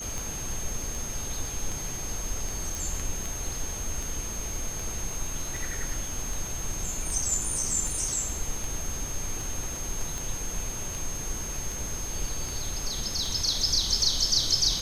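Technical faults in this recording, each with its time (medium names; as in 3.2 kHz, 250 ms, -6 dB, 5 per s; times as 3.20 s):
tick 78 rpm
whine 6.4 kHz -35 dBFS
2.75 s: pop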